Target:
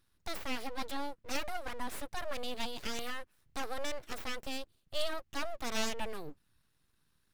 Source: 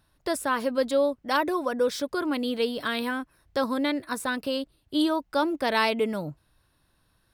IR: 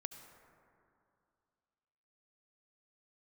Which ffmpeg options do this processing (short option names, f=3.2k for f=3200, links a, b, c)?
-af "equalizer=f=660:t=o:w=0.85:g=-13.5,aeval=exprs='abs(val(0))':c=same,volume=-5dB"